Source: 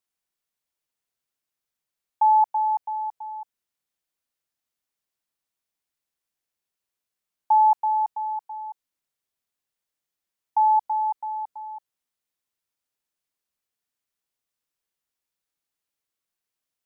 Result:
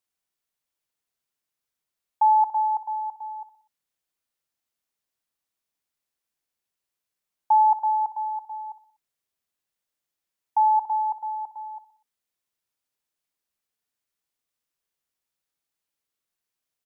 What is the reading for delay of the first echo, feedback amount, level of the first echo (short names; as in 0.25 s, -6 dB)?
61 ms, 47%, -14.0 dB